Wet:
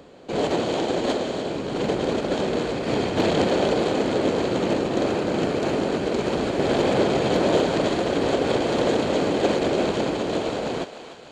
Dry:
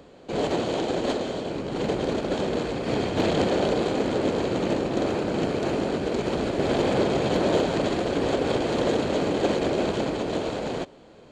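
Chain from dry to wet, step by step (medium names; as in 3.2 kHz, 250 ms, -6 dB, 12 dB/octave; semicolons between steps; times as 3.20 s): bass shelf 88 Hz -5.5 dB; thinning echo 299 ms, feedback 63%, high-pass 580 Hz, level -11 dB; trim +2.5 dB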